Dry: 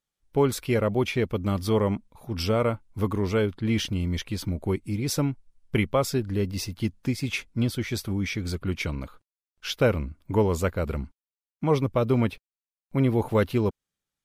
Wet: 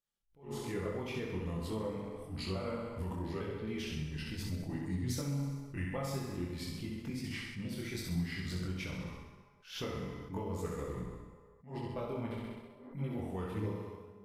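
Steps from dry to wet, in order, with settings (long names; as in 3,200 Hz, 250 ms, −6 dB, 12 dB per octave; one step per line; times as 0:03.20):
pitch shifter gated in a rhythm −2.5 semitones, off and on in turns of 425 ms
flutter between parallel walls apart 11.1 metres, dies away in 0.91 s
downward compressor, threshold −28 dBFS, peak gain reduction 12.5 dB
convolution reverb RT60 2.4 s, pre-delay 3 ms, DRR 7 dB
healed spectral selection 0:12.78–0:12.99, 230–2,100 Hz both
multi-voice chorus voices 4, 0.76 Hz, delay 24 ms, depth 3.7 ms
level that may rise only so fast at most 160 dB per second
level −4.5 dB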